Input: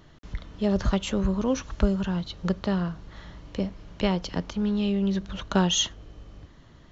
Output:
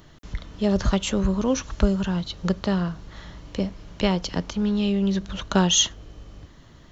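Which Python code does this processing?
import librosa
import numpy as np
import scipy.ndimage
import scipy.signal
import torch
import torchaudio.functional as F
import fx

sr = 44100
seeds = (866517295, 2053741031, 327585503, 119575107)

y = fx.high_shelf(x, sr, hz=6400.0, db=9.0)
y = y * 10.0 ** (2.5 / 20.0)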